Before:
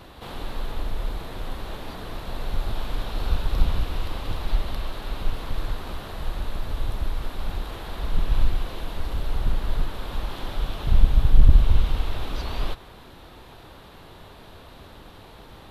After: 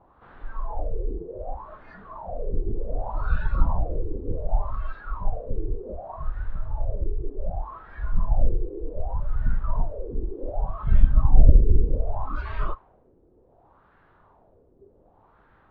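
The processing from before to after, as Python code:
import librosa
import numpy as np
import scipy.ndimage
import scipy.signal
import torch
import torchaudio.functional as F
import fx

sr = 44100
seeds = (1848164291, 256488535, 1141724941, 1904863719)

y = fx.filter_lfo_lowpass(x, sr, shape='sine', hz=0.66, low_hz=400.0, high_hz=1600.0, q=3.1)
y = fx.echo_banded(y, sr, ms=77, feedback_pct=57, hz=2000.0, wet_db=-15.5)
y = fx.noise_reduce_blind(y, sr, reduce_db=15)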